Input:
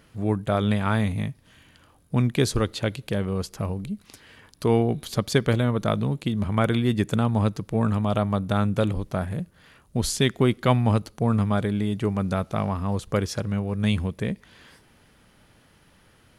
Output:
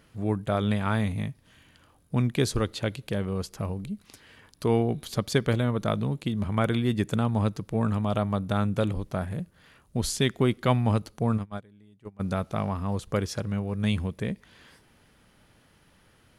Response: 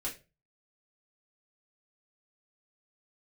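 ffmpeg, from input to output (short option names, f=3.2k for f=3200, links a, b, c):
-filter_complex "[0:a]asplit=3[a][b][c];[a]afade=t=out:st=11.37:d=0.02[d];[b]agate=range=-27dB:threshold=-19dB:ratio=16:detection=peak,afade=t=in:st=11.37:d=0.02,afade=t=out:st=12.19:d=0.02[e];[c]afade=t=in:st=12.19:d=0.02[f];[d][e][f]amix=inputs=3:normalize=0,volume=-3dB"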